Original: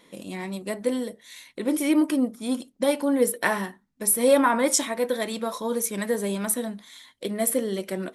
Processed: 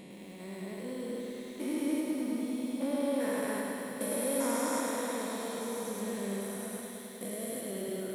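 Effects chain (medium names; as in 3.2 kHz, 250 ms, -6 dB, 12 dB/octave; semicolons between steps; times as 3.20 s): spectrogram pixelated in time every 400 ms; echo with a slow build-up 97 ms, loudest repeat 5, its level -17 dB; bit-crushed delay 105 ms, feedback 80%, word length 9-bit, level -3.5 dB; trim -8.5 dB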